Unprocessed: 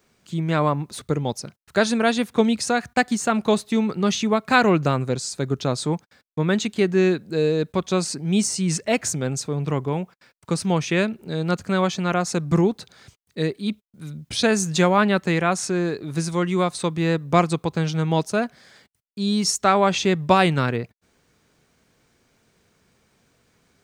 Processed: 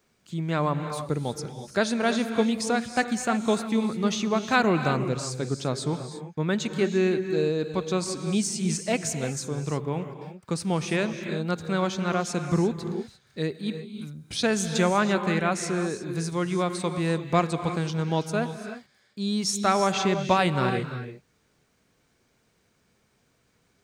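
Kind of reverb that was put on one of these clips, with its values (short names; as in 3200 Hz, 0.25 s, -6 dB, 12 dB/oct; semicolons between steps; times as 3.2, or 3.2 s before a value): non-linear reverb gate 0.37 s rising, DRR 8 dB; gain -5 dB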